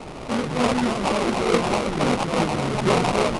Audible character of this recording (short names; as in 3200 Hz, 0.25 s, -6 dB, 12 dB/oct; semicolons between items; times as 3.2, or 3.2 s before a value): a quantiser's noise floor 6-bit, dither triangular; phasing stages 6, 3.5 Hz, lowest notch 470–2800 Hz; aliases and images of a low sample rate 1700 Hz, jitter 20%; IMA ADPCM